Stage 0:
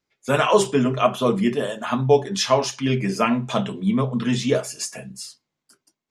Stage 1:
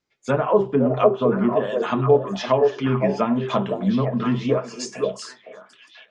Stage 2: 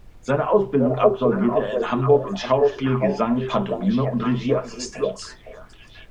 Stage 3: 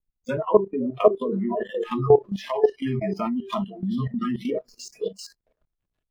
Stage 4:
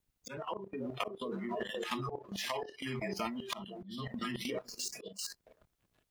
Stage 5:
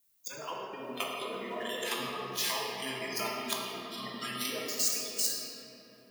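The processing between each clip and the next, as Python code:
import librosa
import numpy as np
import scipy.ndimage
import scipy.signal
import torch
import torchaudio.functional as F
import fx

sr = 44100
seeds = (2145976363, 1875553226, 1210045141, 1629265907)

y1 = scipy.signal.sosfilt(scipy.signal.butter(4, 7700.0, 'lowpass', fs=sr, output='sos'), x)
y1 = fx.env_lowpass_down(y1, sr, base_hz=840.0, full_db=-15.0)
y1 = fx.echo_stepped(y1, sr, ms=511, hz=500.0, octaves=1.4, feedback_pct=70, wet_db=-1.5)
y2 = fx.dmg_noise_colour(y1, sr, seeds[0], colour='brown', level_db=-45.0)
y3 = fx.backlash(y2, sr, play_db=-36.5)
y3 = fx.noise_reduce_blind(y3, sr, reduce_db=28)
y3 = fx.level_steps(y3, sr, step_db=14)
y3 = y3 * 10.0 ** (3.0 / 20.0)
y4 = fx.highpass(y3, sr, hz=120.0, slope=6)
y4 = fx.auto_swell(y4, sr, attack_ms=316.0)
y4 = fx.spectral_comp(y4, sr, ratio=2.0)
y4 = y4 * 10.0 ** (-4.0 / 20.0)
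y5 = fx.riaa(y4, sr, side='recording')
y5 = fx.room_shoebox(y5, sr, seeds[1], volume_m3=220.0, walls='hard', distance_m=0.71)
y5 = y5 * 10.0 ** (-2.0 / 20.0)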